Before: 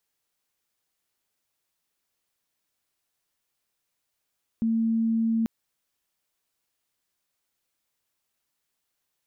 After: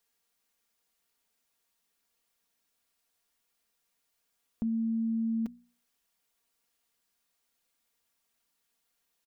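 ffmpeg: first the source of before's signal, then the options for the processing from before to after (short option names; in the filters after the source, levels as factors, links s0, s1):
-f lavfi -i "aevalsrc='0.0891*sin(2*PI*226*t)':d=0.84:s=44100"
-af "bandreject=f=60:t=h:w=6,bandreject=f=120:t=h:w=6,bandreject=f=180:t=h:w=6,bandreject=f=240:t=h:w=6,aecho=1:1:4.3:0.55,acompressor=threshold=0.0141:ratio=2"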